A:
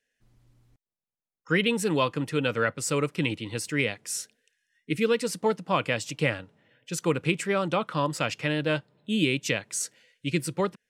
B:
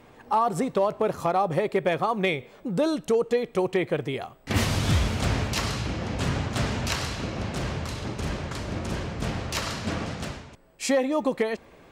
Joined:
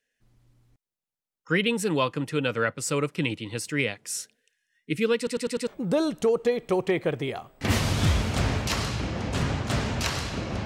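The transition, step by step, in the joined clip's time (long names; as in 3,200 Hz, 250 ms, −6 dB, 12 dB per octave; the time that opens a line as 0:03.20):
A
0:05.17: stutter in place 0.10 s, 5 plays
0:05.67: continue with B from 0:02.53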